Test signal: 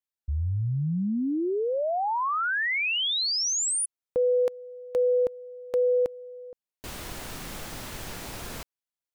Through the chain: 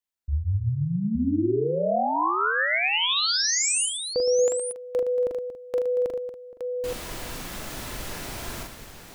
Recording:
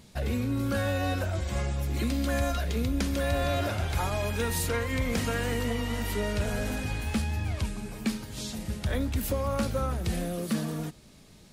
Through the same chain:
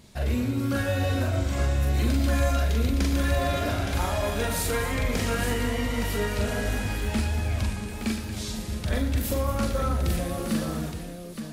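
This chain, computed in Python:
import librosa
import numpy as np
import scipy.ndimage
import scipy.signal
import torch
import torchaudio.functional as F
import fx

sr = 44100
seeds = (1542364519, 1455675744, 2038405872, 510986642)

y = fx.echo_multitap(x, sr, ms=(41, 44, 117, 232, 281, 868), db=(-4.0, -7.5, -9.5, -11.5, -15.5, -7.0))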